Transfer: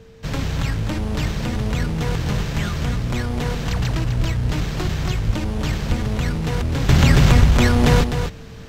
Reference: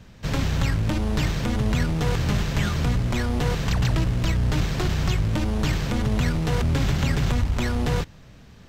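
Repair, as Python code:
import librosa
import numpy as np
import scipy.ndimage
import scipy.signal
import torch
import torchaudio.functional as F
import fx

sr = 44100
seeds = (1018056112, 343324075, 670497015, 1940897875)

y = fx.notch(x, sr, hz=450.0, q=30.0)
y = fx.fix_deplosive(y, sr, at_s=(4.16, 5.26, 5.88))
y = fx.fix_echo_inverse(y, sr, delay_ms=254, level_db=-8.0)
y = fx.fix_level(y, sr, at_s=6.89, step_db=-9.0)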